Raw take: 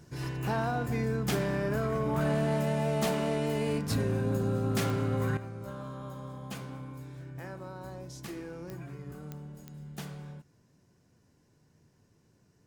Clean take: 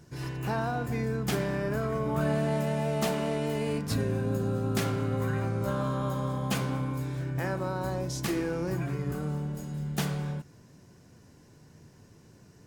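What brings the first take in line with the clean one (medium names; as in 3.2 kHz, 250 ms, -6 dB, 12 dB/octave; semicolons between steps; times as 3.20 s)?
clip repair -22.5 dBFS; de-click; trim 0 dB, from 5.37 s +11 dB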